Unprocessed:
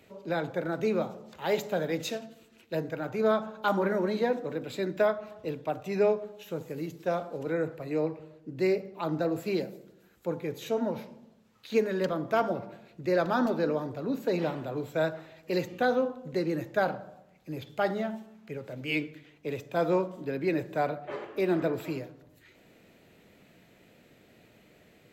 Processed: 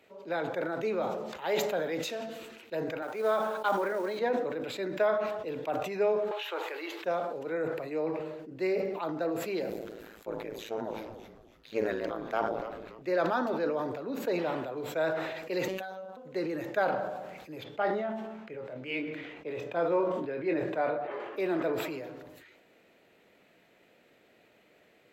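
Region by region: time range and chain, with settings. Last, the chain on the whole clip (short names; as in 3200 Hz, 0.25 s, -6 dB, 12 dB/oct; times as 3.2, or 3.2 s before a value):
3.02–4.19 HPF 270 Hz + notch 2700 Hz, Q 18 + companded quantiser 6-bit
6.31–7.04 elliptic high-pass 330 Hz + band shelf 1800 Hz +12.5 dB 2.8 oct
9.7–13.02 AM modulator 110 Hz, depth 90% + frequency-shifting echo 0.287 s, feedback 57%, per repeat -130 Hz, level -15.5 dB
15.68–16.17 high shelf 5600 Hz +8.5 dB + robotiser 189 Hz + compressor 5:1, threshold -36 dBFS
17.64–21.2 LPF 2400 Hz 6 dB/oct + doubler 24 ms -8 dB
whole clip: tone controls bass -13 dB, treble -6 dB; sustainer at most 38 dB/s; gain -1.5 dB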